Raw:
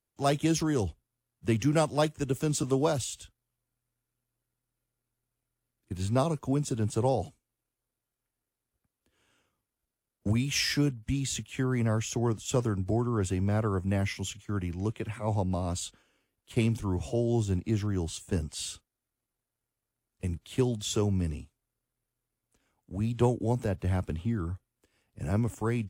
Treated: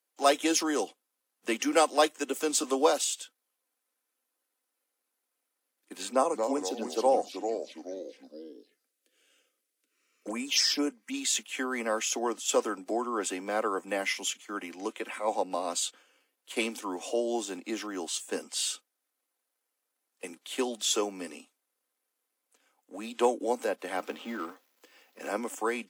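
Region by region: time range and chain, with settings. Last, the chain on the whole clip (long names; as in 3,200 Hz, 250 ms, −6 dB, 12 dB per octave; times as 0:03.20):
0:06.10–0:11.14: phaser swept by the level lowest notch 160 Hz, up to 3,900 Hz, full sweep at −23.5 dBFS + delay with pitch and tempo change per echo 216 ms, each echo −3 semitones, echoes 3, each echo −6 dB
0:23.97–0:25.29: mu-law and A-law mismatch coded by mu + parametric band 9,200 Hz −13.5 dB 0.38 octaves
whole clip: Bessel high-pass filter 490 Hz, order 8; comb filter 3.9 ms, depth 36%; level +5.5 dB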